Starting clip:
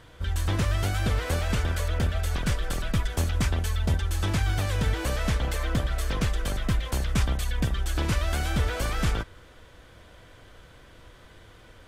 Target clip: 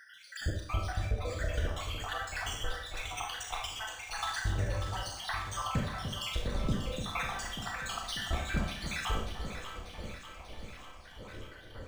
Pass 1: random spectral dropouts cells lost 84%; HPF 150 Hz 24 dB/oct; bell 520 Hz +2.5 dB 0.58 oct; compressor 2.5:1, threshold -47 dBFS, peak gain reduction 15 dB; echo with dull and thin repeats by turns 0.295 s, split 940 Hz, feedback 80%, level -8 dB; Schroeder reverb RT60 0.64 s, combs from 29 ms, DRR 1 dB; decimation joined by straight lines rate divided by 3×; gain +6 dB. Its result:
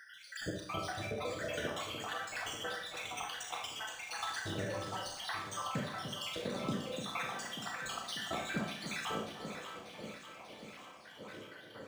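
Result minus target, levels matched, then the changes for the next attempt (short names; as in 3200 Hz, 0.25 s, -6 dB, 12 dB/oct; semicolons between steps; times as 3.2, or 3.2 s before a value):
125 Hz band -6.5 dB; compressor: peak gain reduction +2 dB
change: compressor 2.5:1, threshold -40.5 dBFS, peak gain reduction 13 dB; remove: HPF 150 Hz 24 dB/oct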